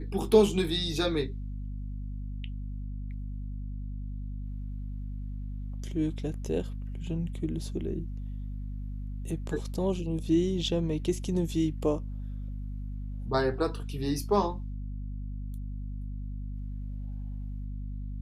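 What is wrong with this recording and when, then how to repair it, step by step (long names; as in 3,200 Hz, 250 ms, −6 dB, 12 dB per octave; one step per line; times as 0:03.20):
mains hum 50 Hz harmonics 5 −36 dBFS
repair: hum removal 50 Hz, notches 5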